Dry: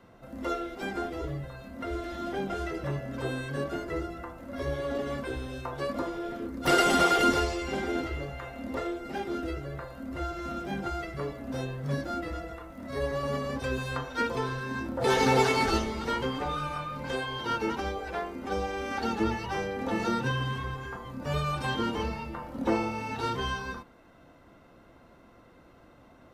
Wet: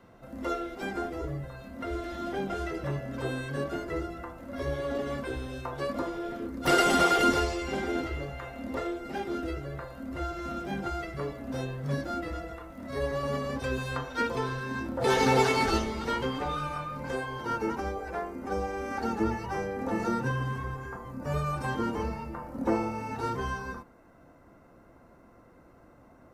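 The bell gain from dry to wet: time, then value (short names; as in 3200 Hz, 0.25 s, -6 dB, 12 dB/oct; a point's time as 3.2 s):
bell 3400 Hz 0.9 oct
0.88 s -2 dB
1.31 s -8.5 dB
1.61 s -1 dB
16.53 s -1 dB
17.35 s -12.5 dB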